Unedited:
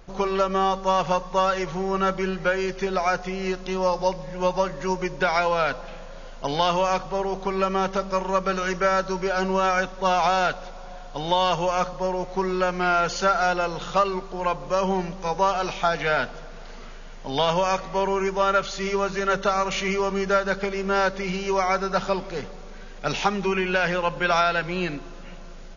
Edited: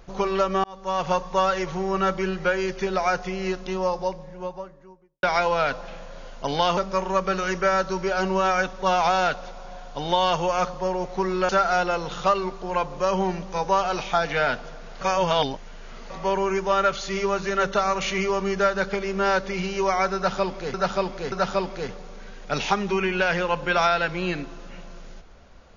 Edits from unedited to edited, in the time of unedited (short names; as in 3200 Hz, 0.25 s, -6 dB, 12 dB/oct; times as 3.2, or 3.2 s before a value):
0.64–1.13 fade in linear
3.37–5.23 studio fade out
6.77–7.96 cut
12.68–13.19 cut
16.71–17.8 reverse
21.86–22.44 loop, 3 plays